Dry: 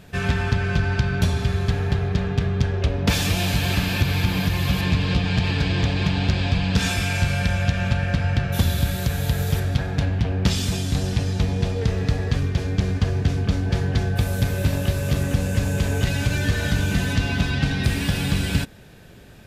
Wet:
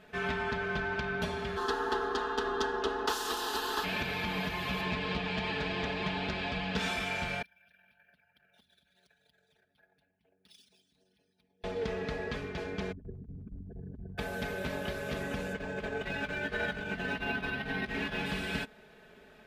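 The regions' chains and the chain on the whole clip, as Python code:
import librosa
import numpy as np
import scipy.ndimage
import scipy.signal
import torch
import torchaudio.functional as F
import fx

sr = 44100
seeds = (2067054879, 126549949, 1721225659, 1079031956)

y = fx.spec_clip(x, sr, under_db=22, at=(1.56, 3.83), fade=0.02)
y = fx.fixed_phaser(y, sr, hz=610.0, stages=6, at=(1.56, 3.83), fade=0.02)
y = fx.chain(y, sr, fx.envelope_sharpen(power=2.0),
    fx.bandpass_q(hz=6400.0, q=1.4),
    fx.resample_bad(factor=3, down='filtered', up='hold'), at=(7.42, 11.64))
y = fx.chain(y, sr, fx.envelope_sharpen(power=3.0),
    fx.over_compress(threshold_db=-22.0, ratio=-0.5), at=(12.92, 14.18))
y = fx.chain(y, sr, fx.high_shelf(hz=5400.0, db=-6.5),
    fx.over_compress(threshold_db=-24.0, ratio=-1.0),
    fx.resample_linear(factor=3), at=(15.53, 18.26))
y = fx.bass_treble(y, sr, bass_db=-14, treble_db=-13)
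y = fx.notch(y, sr, hz=990.0, q=27.0)
y = y + 0.67 * np.pad(y, (int(4.7 * sr / 1000.0), 0))[:len(y)]
y = y * librosa.db_to_amplitude(-6.0)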